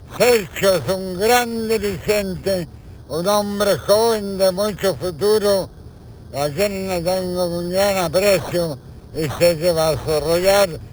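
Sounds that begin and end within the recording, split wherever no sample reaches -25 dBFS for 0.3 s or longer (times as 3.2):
3.11–5.65
6.34–8.74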